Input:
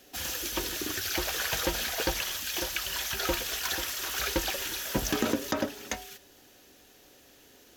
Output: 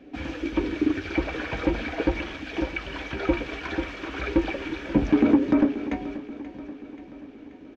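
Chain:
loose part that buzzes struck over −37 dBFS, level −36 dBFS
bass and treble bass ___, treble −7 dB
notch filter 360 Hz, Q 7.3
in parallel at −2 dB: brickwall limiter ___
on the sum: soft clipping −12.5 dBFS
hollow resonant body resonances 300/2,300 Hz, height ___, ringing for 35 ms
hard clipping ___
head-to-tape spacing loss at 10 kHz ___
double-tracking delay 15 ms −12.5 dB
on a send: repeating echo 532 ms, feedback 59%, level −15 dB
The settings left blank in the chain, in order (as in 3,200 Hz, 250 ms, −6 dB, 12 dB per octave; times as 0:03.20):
+3 dB, −23 dBFS, 15 dB, −9.5 dBFS, 33 dB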